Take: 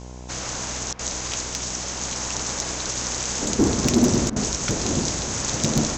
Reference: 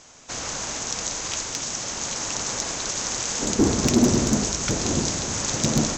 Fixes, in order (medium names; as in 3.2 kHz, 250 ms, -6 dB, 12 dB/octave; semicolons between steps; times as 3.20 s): de-hum 62.2 Hz, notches 17; interpolate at 0.93/4.30 s, 60 ms